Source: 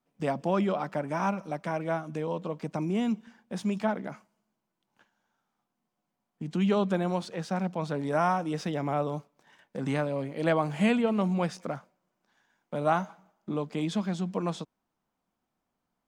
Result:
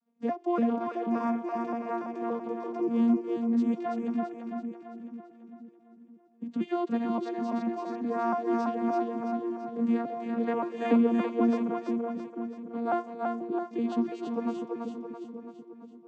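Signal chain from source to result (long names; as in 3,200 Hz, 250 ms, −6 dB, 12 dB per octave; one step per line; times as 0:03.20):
vocoder with an arpeggio as carrier bare fifth, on A#3, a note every 287 ms
on a send: echo with a time of its own for lows and highs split 430 Hz, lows 485 ms, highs 334 ms, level −3 dB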